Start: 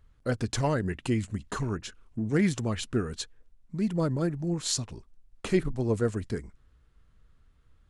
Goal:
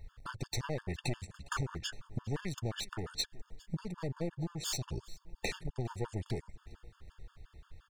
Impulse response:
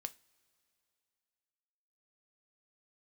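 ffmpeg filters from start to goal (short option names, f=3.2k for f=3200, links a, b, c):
-filter_complex "[0:a]aeval=exprs='clip(val(0),-1,0.0178)':c=same,acompressor=threshold=-41dB:ratio=5,equalizer=f=250:t=o:w=0.67:g=-9,equalizer=f=4k:t=o:w=0.67:g=3,equalizer=f=10k:t=o:w=0.67:g=-5,asplit=2[a][b];[b]aecho=0:1:408|816|1224|1632:0.0794|0.0437|0.024|0.0132[c];[a][c]amix=inputs=2:normalize=0,afftfilt=real='re*gt(sin(2*PI*5.7*pts/sr)*(1-2*mod(floor(b*sr/1024/900),2)),0)':imag='im*gt(sin(2*PI*5.7*pts/sr)*(1-2*mod(floor(b*sr/1024/900),2)),0)':win_size=1024:overlap=0.75,volume=11dB"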